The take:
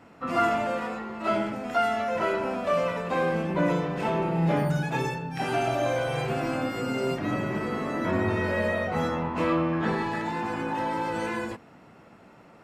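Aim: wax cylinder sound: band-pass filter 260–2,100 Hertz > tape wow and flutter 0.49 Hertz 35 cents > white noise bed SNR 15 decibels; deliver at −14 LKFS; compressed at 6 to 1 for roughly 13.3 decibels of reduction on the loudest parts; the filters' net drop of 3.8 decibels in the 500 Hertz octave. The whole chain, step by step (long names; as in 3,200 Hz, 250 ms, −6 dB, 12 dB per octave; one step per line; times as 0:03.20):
parametric band 500 Hz −4.5 dB
downward compressor 6 to 1, threshold −36 dBFS
band-pass filter 260–2,100 Hz
tape wow and flutter 0.49 Hz 35 cents
white noise bed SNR 15 dB
level +26.5 dB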